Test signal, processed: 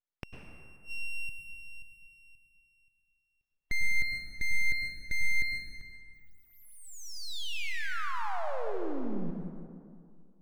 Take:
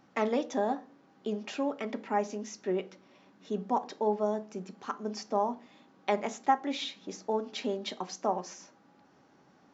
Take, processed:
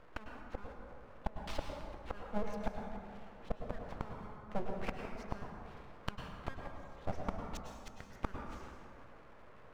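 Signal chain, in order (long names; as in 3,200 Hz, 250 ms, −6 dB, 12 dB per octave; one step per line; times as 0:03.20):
gate with flip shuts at −26 dBFS, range −29 dB
low-pass filter 1,800 Hz 12 dB per octave
gate on every frequency bin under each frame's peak −30 dB strong
full-wave rectification
dense smooth reverb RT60 2.2 s, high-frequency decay 0.45×, pre-delay 90 ms, DRR 2 dB
level +5.5 dB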